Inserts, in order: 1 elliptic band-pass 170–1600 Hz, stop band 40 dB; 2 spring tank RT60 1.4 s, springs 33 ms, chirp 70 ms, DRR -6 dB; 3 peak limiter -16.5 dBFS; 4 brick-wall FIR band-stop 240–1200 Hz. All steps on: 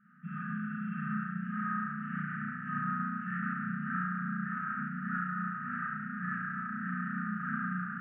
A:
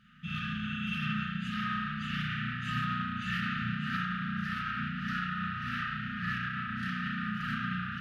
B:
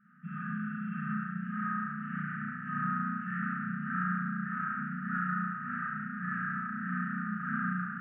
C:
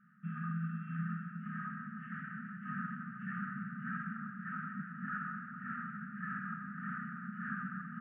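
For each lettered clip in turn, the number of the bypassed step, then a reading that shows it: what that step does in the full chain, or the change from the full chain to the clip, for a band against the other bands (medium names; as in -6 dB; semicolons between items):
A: 1, loudness change +1.5 LU; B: 3, momentary loudness spread change +1 LU; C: 2, 125 Hz band +2.5 dB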